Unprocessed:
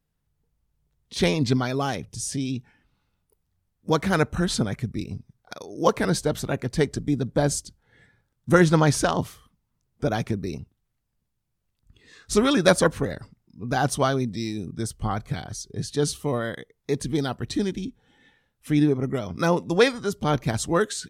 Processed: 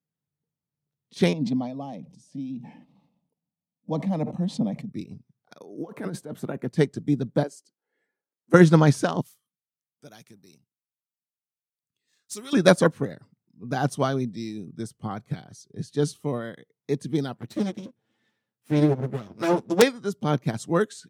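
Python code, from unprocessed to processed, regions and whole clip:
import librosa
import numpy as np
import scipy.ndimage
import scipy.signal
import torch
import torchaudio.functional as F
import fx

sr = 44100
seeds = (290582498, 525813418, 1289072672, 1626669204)

y = fx.chain(x, sr, fx.lowpass(hz=1100.0, slope=6),
    fx.fixed_phaser(hz=390.0, stages=6),
    fx.sustainer(db_per_s=46.0), at=(1.33, 4.89))
y = fx.chain(y, sr, fx.highpass(hz=160.0, slope=12),
    fx.peak_eq(hz=5000.0, db=-11.0, octaves=1.7),
    fx.over_compress(threshold_db=-28.0, ratio=-1.0), at=(5.58, 6.71))
y = fx.chain(y, sr, fx.ladder_highpass(hz=300.0, resonance_pct=30),
    fx.notch(hz=3600.0, q=5.7), at=(7.43, 8.54))
y = fx.chain(y, sr, fx.pre_emphasis(coefficient=0.9),
    fx.leveller(passes=1), at=(9.21, 12.53))
y = fx.chain(y, sr, fx.lower_of_two(delay_ms=9.1),
    fx.overflow_wrap(gain_db=5.0), at=(17.35, 19.82))
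y = scipy.signal.sosfilt(scipy.signal.butter(4, 130.0, 'highpass', fs=sr, output='sos'), y)
y = fx.low_shelf(y, sr, hz=370.0, db=7.0)
y = fx.upward_expand(y, sr, threshold_db=-35.0, expansion=1.5)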